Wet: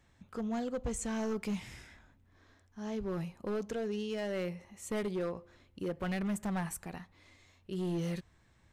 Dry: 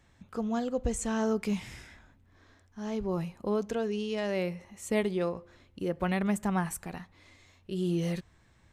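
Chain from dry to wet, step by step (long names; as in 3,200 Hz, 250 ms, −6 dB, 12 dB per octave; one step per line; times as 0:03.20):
hard clipping −26.5 dBFS, distortion −11 dB
level −3.5 dB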